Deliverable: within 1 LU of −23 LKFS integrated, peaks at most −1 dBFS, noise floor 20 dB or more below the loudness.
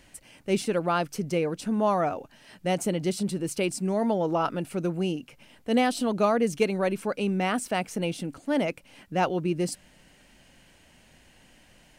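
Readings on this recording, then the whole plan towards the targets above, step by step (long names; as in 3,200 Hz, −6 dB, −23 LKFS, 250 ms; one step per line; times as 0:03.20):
integrated loudness −27.5 LKFS; sample peak −12.0 dBFS; target loudness −23.0 LKFS
→ level +4.5 dB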